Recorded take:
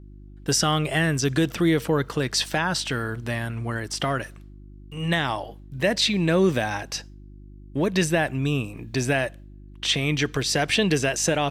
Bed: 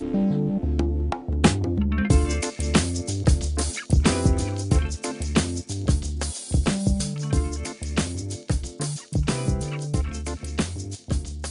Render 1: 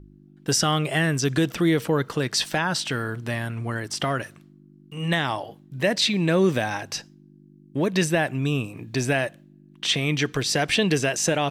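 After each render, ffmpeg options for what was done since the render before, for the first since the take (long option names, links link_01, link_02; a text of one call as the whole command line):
ffmpeg -i in.wav -af "bandreject=frequency=50:width_type=h:width=4,bandreject=frequency=100:width_type=h:width=4" out.wav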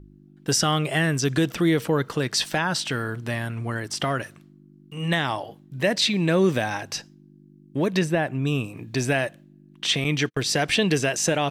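ffmpeg -i in.wav -filter_complex "[0:a]asettb=1/sr,asplit=3[link_01][link_02][link_03];[link_01]atrim=end=7.994[link_04];[link_02]atrim=start=7.99:end=8.47,asetpts=PTS-STARTPTS,afade=type=in:duration=0.004:curve=qsin,afade=type=out:start_time=0.476:duration=0.004:curve=qsin,highshelf=frequency=2500:gain=-9.5[link_05];[link_03]atrim=start=8.466[link_06];[link_04][link_05]acrossfade=duration=0.004:curve1=hsin:curve2=qsin[link_07];[link_07][link_06]acrossfade=duration=0.004:curve1=qsin:curve2=hsin,asettb=1/sr,asplit=3[link_08][link_09][link_10];[link_08]atrim=end=10.044[link_11];[link_09]atrim=start=10.04:end=10.52,asetpts=PTS-STARTPTS,afade=type=in:duration=0.004:curve=qsin,afade=type=out:start_time=0.476:duration=0.004:curve=qsin,agate=range=-43dB:threshold=-30dB:ratio=16:release=100:detection=peak[link_12];[link_10]atrim=start=10.516[link_13];[link_11][link_12]acrossfade=duration=0.004:curve1=hsin:curve2=qsin[link_14];[link_14][link_13]acrossfade=duration=0.004:curve1=qsin:curve2=hsin" out.wav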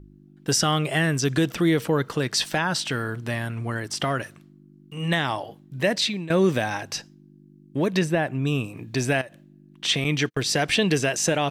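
ffmpeg -i in.wav -filter_complex "[0:a]asettb=1/sr,asplit=3[link_01][link_02][link_03];[link_01]atrim=end=9.214[link_04];[link_02]atrim=start=9.21:end=9.84,asetpts=PTS-STARTPTS,afade=type=in:duration=0.004:curve=qsin,afade=type=out:start_time=0.626:duration=0.004:curve=qsin,acompressor=threshold=-35dB:ratio=10:attack=3.2:release=140:knee=1:detection=peak[link_05];[link_03]atrim=start=9.836[link_06];[link_04][link_05]acrossfade=duration=0.004:curve1=hsin:curve2=qsin[link_07];[link_07][link_06]acrossfade=duration=0.004:curve1=qsin:curve2=hsin,asplit=2[link_08][link_09];[link_08]atrim=end=6.3,asetpts=PTS-STARTPTS,afade=type=out:start_time=5.81:duration=0.49:curve=qsin:silence=0.125893[link_10];[link_09]atrim=start=6.3,asetpts=PTS-STARTPTS,afade=type=in:duration=0.004:curve=hsin:silence=0.125893[link_11];[link_10][link_11]concat=n=2:v=0:a=1" out.wav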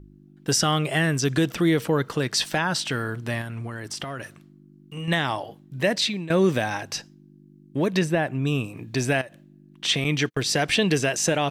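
ffmpeg -i in.wav -filter_complex "[0:a]asettb=1/sr,asplit=3[link_01][link_02][link_03];[link_01]atrim=end=3.414[link_04];[link_02]atrim=start=3.41:end=5.08,asetpts=PTS-STARTPTS,afade=type=in:duration=0.004:curve=qsin,afade=type=out:start_time=1.666:duration=0.004:curve=qsin,acompressor=threshold=-28dB:ratio=6:attack=3.2:release=140:knee=1:detection=peak[link_05];[link_03]atrim=start=5.076[link_06];[link_04][link_05]acrossfade=duration=0.004:curve1=hsin:curve2=qsin[link_07];[link_07][link_06]acrossfade=duration=0.004:curve1=qsin:curve2=hsin" out.wav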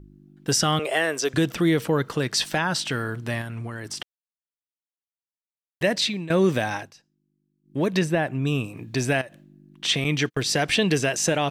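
ffmpeg -i in.wav -filter_complex "[0:a]asettb=1/sr,asplit=3[link_01][link_02][link_03];[link_01]atrim=end=0.794[link_04];[link_02]atrim=start=0.79:end=1.34,asetpts=PTS-STARTPTS,afade=type=in:duration=0.004:curve=qsin,afade=type=out:start_time=0.546:duration=0.004:curve=qsin,highpass=frequency=490:width_type=q:width=1.7[link_05];[link_03]atrim=start=1.336[link_06];[link_04][link_05]acrossfade=duration=0.004:curve1=hsin:curve2=qsin[link_07];[link_07][link_06]acrossfade=duration=0.004:curve1=qsin:curve2=hsin,asplit=5[link_08][link_09][link_10][link_11][link_12];[link_08]atrim=end=4.03,asetpts=PTS-STARTPTS,afade=type=out:start_time=4.026:duration=0.004:curve=hsin[link_13];[link_09]atrim=start=4.03:end=5.81,asetpts=PTS-STARTPTS,volume=0[link_14];[link_10]atrim=start=5.81:end=6.93,asetpts=PTS-STARTPTS,afade=type=in:duration=0.004:curve=hsin,afade=type=out:start_time=0.9:duration=0.22:curve=qsin:silence=0.0794328[link_15];[link_11]atrim=start=6.93:end=7.63,asetpts=PTS-STARTPTS,volume=-22dB[link_16];[link_12]atrim=start=7.63,asetpts=PTS-STARTPTS,afade=type=in:duration=0.22:curve=qsin:silence=0.0794328[link_17];[link_13][link_14][link_15][link_16][link_17]concat=n=5:v=0:a=1" out.wav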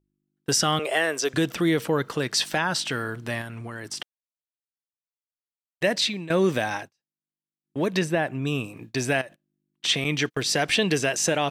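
ffmpeg -i in.wav -af "agate=range=-25dB:threshold=-37dB:ratio=16:detection=peak,lowshelf=frequency=170:gain=-7" out.wav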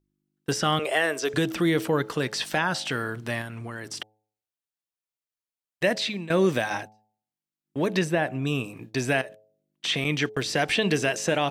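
ffmpeg -i in.wav -filter_complex "[0:a]bandreject=frequency=107.4:width_type=h:width=4,bandreject=frequency=214.8:width_type=h:width=4,bandreject=frequency=322.2:width_type=h:width=4,bandreject=frequency=429.6:width_type=h:width=4,bandreject=frequency=537:width_type=h:width=4,bandreject=frequency=644.4:width_type=h:width=4,bandreject=frequency=751.8:width_type=h:width=4,bandreject=frequency=859.2:width_type=h:width=4,acrossover=split=3100[link_01][link_02];[link_02]acompressor=threshold=-30dB:ratio=4:attack=1:release=60[link_03];[link_01][link_03]amix=inputs=2:normalize=0" out.wav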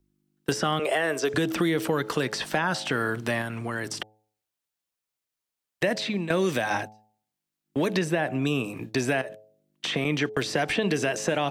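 ffmpeg -i in.wav -filter_complex "[0:a]asplit=2[link_01][link_02];[link_02]alimiter=limit=-17dB:level=0:latency=1:release=71,volume=0dB[link_03];[link_01][link_03]amix=inputs=2:normalize=0,acrossover=split=170|1700[link_04][link_05][link_06];[link_04]acompressor=threshold=-39dB:ratio=4[link_07];[link_05]acompressor=threshold=-23dB:ratio=4[link_08];[link_06]acompressor=threshold=-33dB:ratio=4[link_09];[link_07][link_08][link_09]amix=inputs=3:normalize=0" out.wav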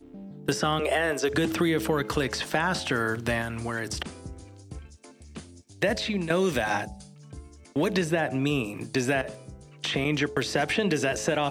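ffmpeg -i in.wav -i bed.wav -filter_complex "[1:a]volume=-20.5dB[link_01];[0:a][link_01]amix=inputs=2:normalize=0" out.wav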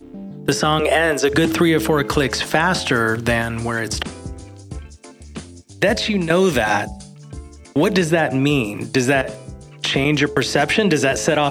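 ffmpeg -i in.wav -af "volume=9dB,alimiter=limit=-3dB:level=0:latency=1" out.wav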